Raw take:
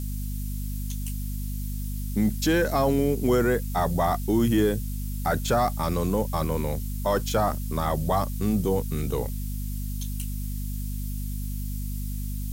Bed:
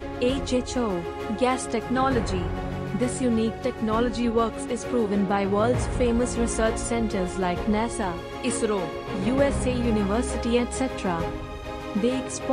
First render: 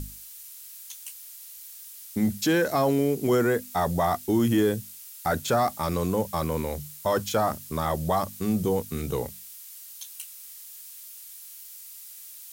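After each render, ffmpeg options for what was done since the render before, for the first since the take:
-af "bandreject=f=50:t=h:w=6,bandreject=f=100:t=h:w=6,bandreject=f=150:t=h:w=6,bandreject=f=200:t=h:w=6,bandreject=f=250:t=h:w=6"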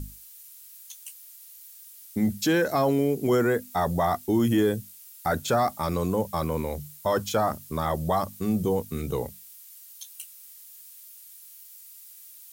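-af "afftdn=nr=6:nf=-45"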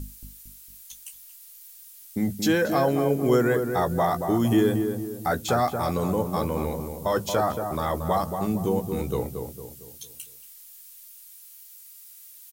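-filter_complex "[0:a]asplit=2[a][b];[b]adelay=16,volume=-11.5dB[c];[a][c]amix=inputs=2:normalize=0,asplit=2[d][e];[e]adelay=228,lowpass=f=1.2k:p=1,volume=-5.5dB,asplit=2[f][g];[g]adelay=228,lowpass=f=1.2k:p=1,volume=0.45,asplit=2[h][i];[i]adelay=228,lowpass=f=1.2k:p=1,volume=0.45,asplit=2[j][k];[k]adelay=228,lowpass=f=1.2k:p=1,volume=0.45,asplit=2[l][m];[m]adelay=228,lowpass=f=1.2k:p=1,volume=0.45[n];[d][f][h][j][l][n]amix=inputs=6:normalize=0"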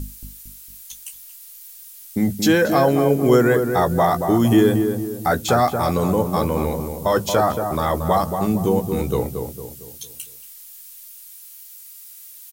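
-af "volume=6dB"

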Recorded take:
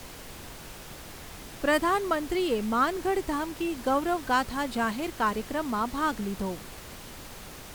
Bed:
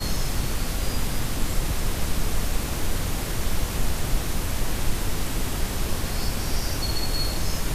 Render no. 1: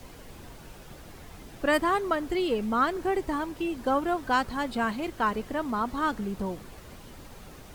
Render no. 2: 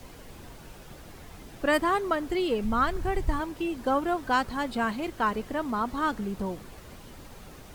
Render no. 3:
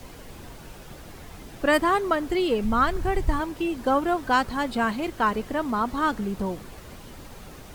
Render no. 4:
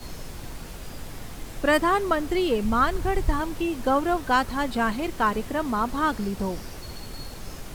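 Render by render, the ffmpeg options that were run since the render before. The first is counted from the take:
-af "afftdn=nr=8:nf=-44"
-filter_complex "[0:a]asplit=3[a][b][c];[a]afade=t=out:st=2.63:d=0.02[d];[b]asubboost=boost=8.5:cutoff=120,afade=t=in:st=2.63:d=0.02,afade=t=out:st=3.39:d=0.02[e];[c]afade=t=in:st=3.39:d=0.02[f];[d][e][f]amix=inputs=3:normalize=0"
-af "volume=3.5dB"
-filter_complex "[1:a]volume=-14dB[a];[0:a][a]amix=inputs=2:normalize=0"

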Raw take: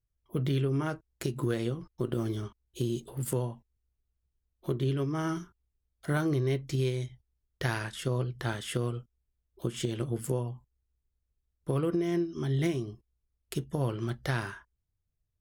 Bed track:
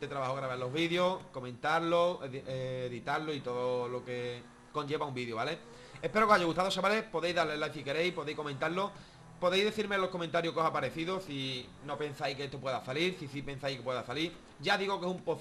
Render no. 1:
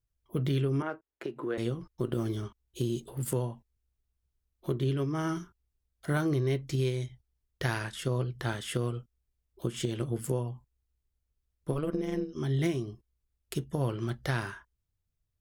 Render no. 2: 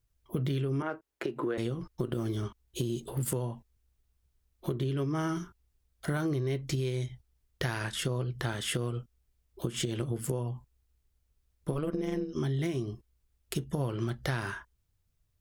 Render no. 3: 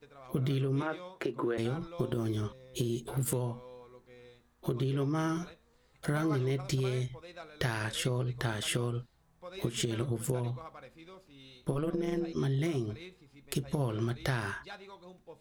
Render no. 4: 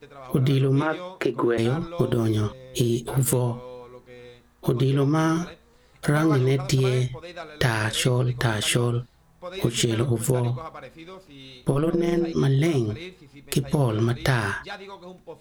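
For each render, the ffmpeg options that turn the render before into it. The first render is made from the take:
-filter_complex "[0:a]asettb=1/sr,asplit=3[a][b][c];[a]atrim=end=0.824[d];[b]atrim=start=0.82:end=1.58,asetpts=PTS-STARTPTS,afade=t=in:d=0.004:c=qsin,afade=t=out:st=0.756:d=0.004:c=qsin,acrossover=split=260 2800:gain=0.0794 1 0.0794[e][f][g];[e][f][g]amix=inputs=3:normalize=0[h];[c]atrim=start=1.576[i];[d][h]acrossfade=d=0.004:c1=hsin:c2=qsin[j];[j][i]acrossfade=d=0.004:c1=qsin:c2=hsin,asettb=1/sr,asplit=3[k][l][m];[k]atrim=end=11.724[n];[l]atrim=start=11.72:end=12.36,asetpts=PTS-STARTPTS,afade=t=in:d=0.004:c=qsin,afade=t=out:st=0.636:d=0.004:c=qsin,tremolo=f=150:d=0.788[o];[m]atrim=start=12.356[p];[n][o]acrossfade=d=0.004:c1=hsin:c2=qsin[q];[q][p]acrossfade=d=0.004:c1=qsin:c2=hsin"
-filter_complex "[0:a]asplit=2[a][b];[b]alimiter=limit=-24dB:level=0:latency=1:release=112,volume=1.5dB[c];[a][c]amix=inputs=2:normalize=0,acompressor=threshold=-29dB:ratio=4"
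-filter_complex "[1:a]volume=-17dB[a];[0:a][a]amix=inputs=2:normalize=0"
-af "volume=10dB,alimiter=limit=-3dB:level=0:latency=1"

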